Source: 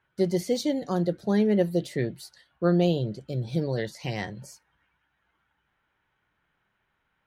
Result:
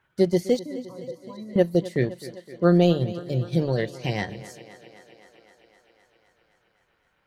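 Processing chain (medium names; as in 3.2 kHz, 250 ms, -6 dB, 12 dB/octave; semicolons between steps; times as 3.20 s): transient shaper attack 0 dB, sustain -8 dB; 0.59–1.56 s: pitch-class resonator B, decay 0.16 s; thinning echo 258 ms, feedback 73%, high-pass 160 Hz, level -16 dB; trim +4.5 dB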